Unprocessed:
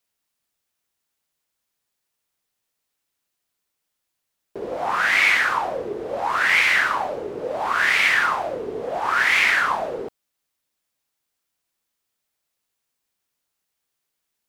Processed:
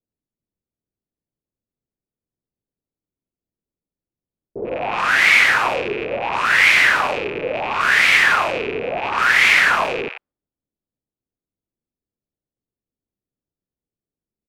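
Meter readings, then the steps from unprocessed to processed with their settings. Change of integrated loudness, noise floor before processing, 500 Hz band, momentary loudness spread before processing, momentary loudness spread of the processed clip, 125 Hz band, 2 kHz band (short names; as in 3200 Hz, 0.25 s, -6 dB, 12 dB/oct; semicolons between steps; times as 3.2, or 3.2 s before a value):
+4.5 dB, -80 dBFS, +3.5 dB, 14 LU, 13 LU, +7.0 dB, +4.5 dB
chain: rattling part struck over -49 dBFS, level -19 dBFS; low-pass opened by the level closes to 340 Hz, open at -18 dBFS; bands offset in time lows, highs 90 ms, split 870 Hz; gain +5 dB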